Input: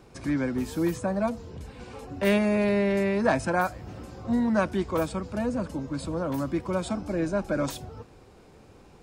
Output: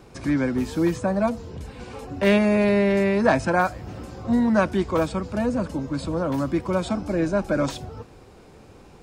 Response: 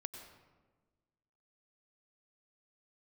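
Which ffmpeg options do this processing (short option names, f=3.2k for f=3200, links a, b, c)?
-filter_complex "[0:a]acrossover=split=7300[a][b];[b]acompressor=threshold=-56dB:ratio=4:attack=1:release=60[c];[a][c]amix=inputs=2:normalize=0,volume=4.5dB"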